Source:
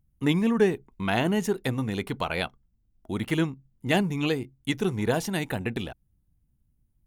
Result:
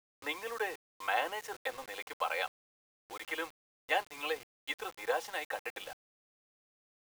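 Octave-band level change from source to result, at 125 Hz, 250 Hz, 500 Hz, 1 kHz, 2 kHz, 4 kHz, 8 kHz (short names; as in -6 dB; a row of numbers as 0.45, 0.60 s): under -35 dB, -27.5 dB, -11.0 dB, -2.5 dB, -4.0 dB, -7.0 dB, -8.0 dB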